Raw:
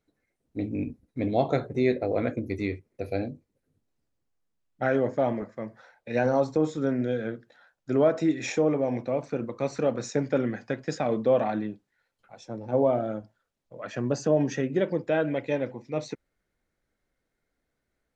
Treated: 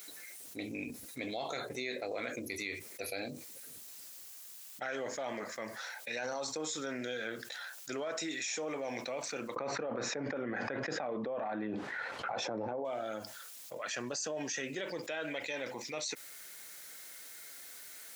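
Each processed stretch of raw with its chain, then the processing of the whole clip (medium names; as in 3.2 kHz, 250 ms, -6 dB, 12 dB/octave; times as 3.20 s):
9.56–12.85 s: low-pass 1.1 kHz + level flattener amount 100%
whole clip: differentiator; peak limiter -39 dBFS; level flattener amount 70%; trim +8 dB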